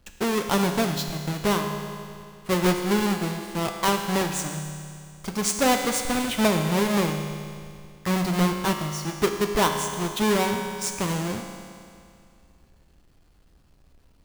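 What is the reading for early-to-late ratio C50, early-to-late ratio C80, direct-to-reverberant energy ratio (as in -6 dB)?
5.5 dB, 6.5 dB, 4.0 dB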